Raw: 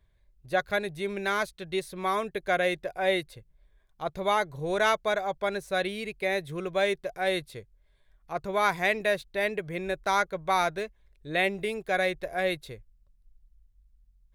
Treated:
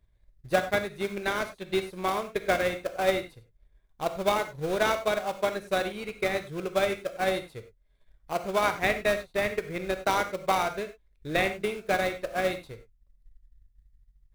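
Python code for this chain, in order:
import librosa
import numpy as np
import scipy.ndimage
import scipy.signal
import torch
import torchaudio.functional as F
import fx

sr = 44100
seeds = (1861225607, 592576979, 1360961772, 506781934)

p1 = fx.transient(x, sr, attack_db=6, sustain_db=-5)
p2 = fx.sample_hold(p1, sr, seeds[0], rate_hz=1900.0, jitter_pct=20)
p3 = p1 + (p2 * librosa.db_to_amplitude(-7.0))
p4 = fx.rev_gated(p3, sr, seeds[1], gate_ms=120, shape='flat', drr_db=8.0)
y = p4 * librosa.db_to_amplitude(-4.0)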